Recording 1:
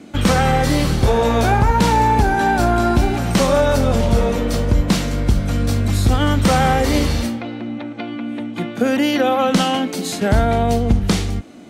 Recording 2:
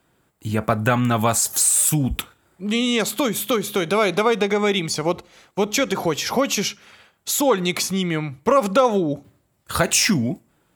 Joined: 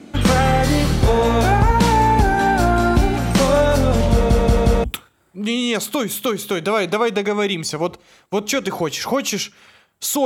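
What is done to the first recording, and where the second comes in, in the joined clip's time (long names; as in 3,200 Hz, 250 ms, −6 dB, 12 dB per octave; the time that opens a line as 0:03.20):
recording 1
0:04.12: stutter in place 0.18 s, 4 plays
0:04.84: continue with recording 2 from 0:02.09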